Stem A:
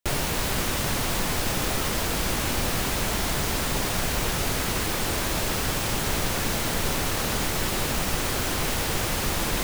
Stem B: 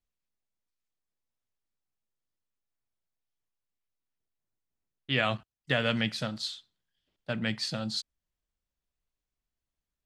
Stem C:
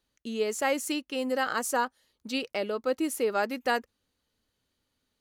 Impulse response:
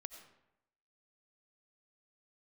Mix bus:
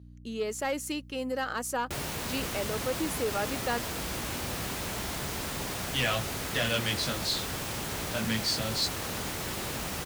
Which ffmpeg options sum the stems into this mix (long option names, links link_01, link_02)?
-filter_complex "[0:a]adelay=1850,volume=-7.5dB[link_01];[1:a]highshelf=frequency=3800:gain=11.5,flanger=delay=16.5:depth=5.1:speed=0.38,adelay=850,volume=3dB[link_02];[2:a]aeval=exprs='val(0)+0.00631*(sin(2*PI*60*n/s)+sin(2*PI*2*60*n/s)/2+sin(2*PI*3*60*n/s)/3+sin(2*PI*4*60*n/s)/4+sin(2*PI*5*60*n/s)/5)':channel_layout=same,volume=-2.5dB[link_03];[link_01][link_02][link_03]amix=inputs=3:normalize=0,highpass=54,asoftclip=type=tanh:threshold=-21.5dB"